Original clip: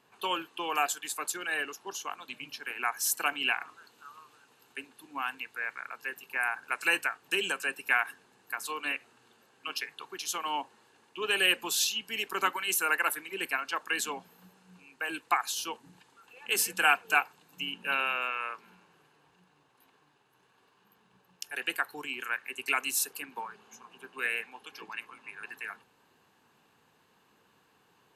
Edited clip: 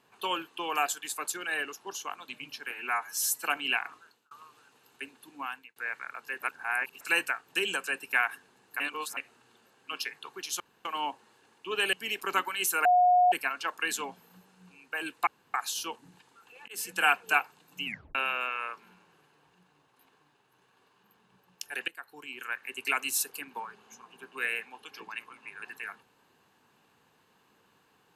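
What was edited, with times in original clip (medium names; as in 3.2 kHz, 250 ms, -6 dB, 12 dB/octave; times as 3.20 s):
2.72–3.20 s: stretch 1.5×
3.70–4.07 s: fade out
5.11–5.52 s: fade out linear
6.18–6.77 s: reverse
8.56–8.93 s: reverse
10.36 s: insert room tone 0.25 s
11.44–12.01 s: delete
12.93–13.40 s: bleep 721 Hz -18 dBFS
15.35 s: insert room tone 0.27 s
16.49–16.96 s: fade in equal-power
17.66 s: tape stop 0.30 s
21.69–22.54 s: fade in, from -20 dB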